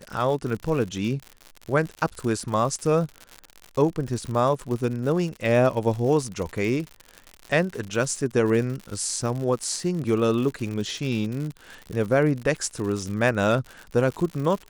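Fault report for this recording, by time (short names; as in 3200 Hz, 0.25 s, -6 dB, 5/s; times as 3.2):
crackle 100/s -30 dBFS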